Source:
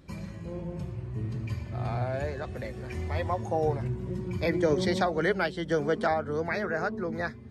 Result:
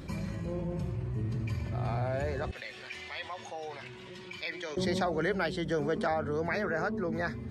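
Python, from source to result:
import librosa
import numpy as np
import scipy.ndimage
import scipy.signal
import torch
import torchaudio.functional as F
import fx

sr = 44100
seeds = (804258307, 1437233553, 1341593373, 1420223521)

y = fx.bandpass_q(x, sr, hz=3200.0, q=1.8, at=(2.51, 4.77))
y = fx.env_flatten(y, sr, amount_pct=50)
y = F.gain(torch.from_numpy(y), -5.0).numpy()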